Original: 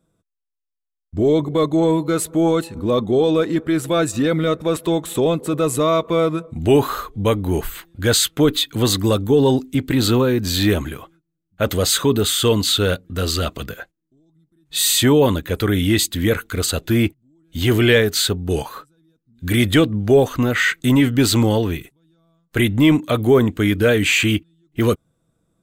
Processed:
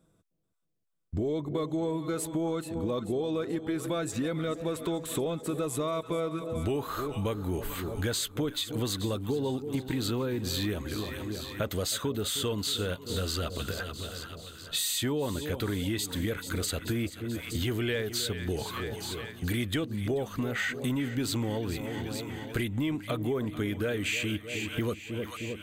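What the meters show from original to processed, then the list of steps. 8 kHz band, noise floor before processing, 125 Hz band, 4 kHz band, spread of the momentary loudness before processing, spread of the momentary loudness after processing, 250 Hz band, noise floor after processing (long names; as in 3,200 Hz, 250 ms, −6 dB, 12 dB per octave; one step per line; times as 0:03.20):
−12.5 dB, −78 dBFS, −12.5 dB, −12.5 dB, 9 LU, 5 LU, −13.5 dB, −48 dBFS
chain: echo with a time of its own for lows and highs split 810 Hz, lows 311 ms, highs 435 ms, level −14 dB
downward compressor 5 to 1, threshold −30 dBFS, peak gain reduction 18.5 dB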